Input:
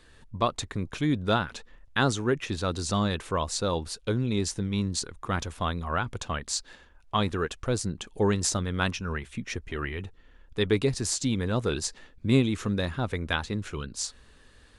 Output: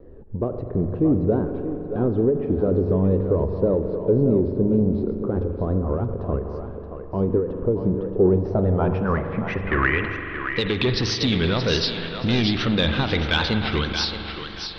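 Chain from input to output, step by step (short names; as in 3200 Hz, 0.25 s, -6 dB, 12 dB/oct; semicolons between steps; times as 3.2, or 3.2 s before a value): Chebyshev low-pass 5700 Hz, order 10; de-hum 47.97 Hz, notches 2; wow and flutter 140 cents; in parallel at 0 dB: negative-ratio compressor -31 dBFS; on the sum: soft clip -20 dBFS, distortion -13 dB; low-pass sweep 440 Hz -> 3700 Hz, 8.24–10.54; on a send: thinning echo 0.625 s, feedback 25%, high-pass 450 Hz, level -7 dB; on the sum: spring tank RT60 3.6 s, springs 42 ms, chirp 40 ms, DRR 6.5 dB; ending taper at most 100 dB/s; gain +4.5 dB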